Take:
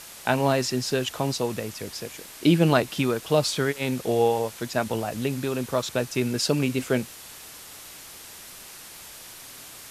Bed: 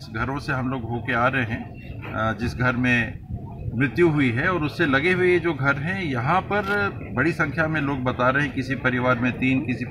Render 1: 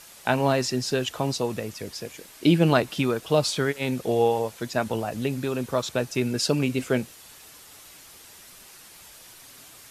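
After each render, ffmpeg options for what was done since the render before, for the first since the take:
ffmpeg -i in.wav -af "afftdn=noise_reduction=6:noise_floor=-44" out.wav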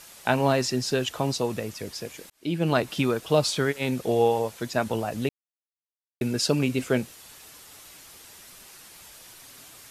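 ffmpeg -i in.wav -filter_complex "[0:a]asplit=4[link_01][link_02][link_03][link_04];[link_01]atrim=end=2.3,asetpts=PTS-STARTPTS,afade=type=out:start_time=2.296:duration=0.004:curve=hsin[link_05];[link_02]atrim=start=2.3:end=5.29,asetpts=PTS-STARTPTS,afade=type=in:duration=0.62,afade=type=out:start_time=2.986:duration=0.004:curve=hsin[link_06];[link_03]atrim=start=5.29:end=6.21,asetpts=PTS-STARTPTS,volume=0[link_07];[link_04]atrim=start=6.21,asetpts=PTS-STARTPTS,afade=type=in:duration=0.004:curve=hsin[link_08];[link_05][link_06][link_07][link_08]concat=n=4:v=0:a=1" out.wav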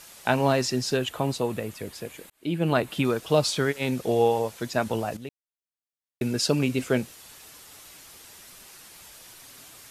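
ffmpeg -i in.wav -filter_complex "[0:a]asettb=1/sr,asplit=3[link_01][link_02][link_03];[link_01]atrim=end=0.974[link_04];[link_02]atrim=start=0.97:end=3.05,asetpts=PTS-STARTPTS,afade=type=in:duration=0.004:curve=qsin,afade=type=out:start_time=2.076:duration=0.004:curve=qsin,equalizer=frequency=5500:width_type=o:width=0.61:gain=-9[link_05];[link_03]atrim=start=3.046[link_06];[link_04][link_05]acrossfade=duration=0.004:curve1=hsin:curve2=qsin[link_07];[link_07][link_06]acrossfade=duration=0.004:curve1=qsin:curve2=hsin,asplit=2[link_08][link_09];[link_08]atrim=end=5.17,asetpts=PTS-STARTPTS,afade=type=out:start_time=5.166:duration=0.004:curve=hsin:silence=0.211349[link_10];[link_09]atrim=start=5.17,asetpts=PTS-STARTPTS,afade=type=in:duration=1.1:silence=0.211349[link_11];[link_10][link_11]concat=n=2:v=0:a=1" out.wav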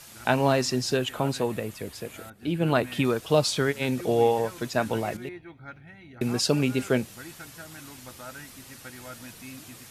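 ffmpeg -i in.wav -i bed.wav -filter_complex "[1:a]volume=-22.5dB[link_01];[0:a][link_01]amix=inputs=2:normalize=0" out.wav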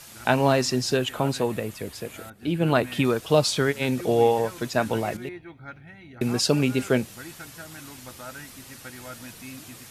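ffmpeg -i in.wav -af "volume=2dB" out.wav

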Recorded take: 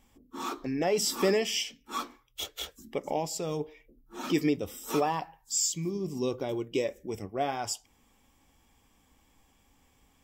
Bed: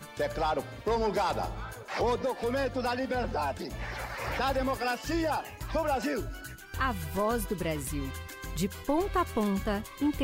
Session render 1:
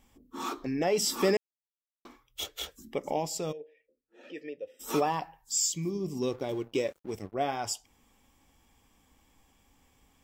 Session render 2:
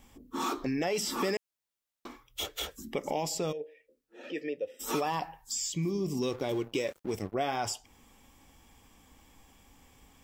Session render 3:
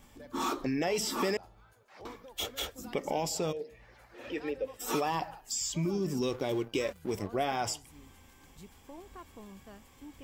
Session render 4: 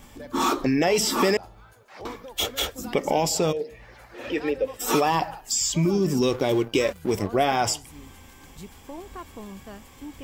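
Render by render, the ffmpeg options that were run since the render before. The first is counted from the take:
ffmpeg -i in.wav -filter_complex "[0:a]asplit=3[link_01][link_02][link_03];[link_01]afade=type=out:start_time=3.51:duration=0.02[link_04];[link_02]asplit=3[link_05][link_06][link_07];[link_05]bandpass=frequency=530:width_type=q:width=8,volume=0dB[link_08];[link_06]bandpass=frequency=1840:width_type=q:width=8,volume=-6dB[link_09];[link_07]bandpass=frequency=2480:width_type=q:width=8,volume=-9dB[link_10];[link_08][link_09][link_10]amix=inputs=3:normalize=0,afade=type=in:start_time=3.51:duration=0.02,afade=type=out:start_time=4.79:duration=0.02[link_11];[link_03]afade=type=in:start_time=4.79:duration=0.02[link_12];[link_04][link_11][link_12]amix=inputs=3:normalize=0,asettb=1/sr,asplit=3[link_13][link_14][link_15];[link_13]atrim=end=6.224[link_16];[link_14]atrim=start=6.22:end=7.34,asetpts=PTS-STARTPTS,afade=type=in:duration=0.004:curve=qsin,afade=type=out:start_time=1.116:duration=0.004:curve=qsin,aeval=exprs='sgn(val(0))*max(abs(val(0))-0.00266,0)':channel_layout=same[link_17];[link_15]atrim=start=7.336[link_18];[link_16][link_17]acrossfade=duration=0.004:curve1=hsin:curve2=qsin[link_19];[link_19][link_18]acrossfade=duration=0.004:curve1=qsin:curve2=hsin,asplit=3[link_20][link_21][link_22];[link_20]atrim=end=1.37,asetpts=PTS-STARTPTS,afade=type=out:start_time=1.366:duration=0.004:curve=hsin[link_23];[link_21]atrim=start=1.37:end=2.05,asetpts=PTS-STARTPTS,volume=0[link_24];[link_22]atrim=start=2.05,asetpts=PTS-STARTPTS,afade=type=in:duration=0.004:curve=hsin[link_25];[link_23][link_24][link_25]concat=n=3:v=0:a=1" out.wav
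ffmpeg -i in.wav -filter_complex "[0:a]acrossover=split=1200|2800|6400[link_01][link_02][link_03][link_04];[link_01]acompressor=threshold=-33dB:ratio=4[link_05];[link_02]acompressor=threshold=-42dB:ratio=4[link_06];[link_03]acompressor=threshold=-46dB:ratio=4[link_07];[link_04]acompressor=threshold=-46dB:ratio=4[link_08];[link_05][link_06][link_07][link_08]amix=inputs=4:normalize=0,asplit=2[link_09][link_10];[link_10]alimiter=level_in=8dB:limit=-24dB:level=0:latency=1:release=19,volume=-8dB,volume=0dB[link_11];[link_09][link_11]amix=inputs=2:normalize=0" out.wav
ffmpeg -i in.wav -i bed.wav -filter_complex "[1:a]volume=-21dB[link_01];[0:a][link_01]amix=inputs=2:normalize=0" out.wav
ffmpeg -i in.wav -af "volume=9.5dB" out.wav

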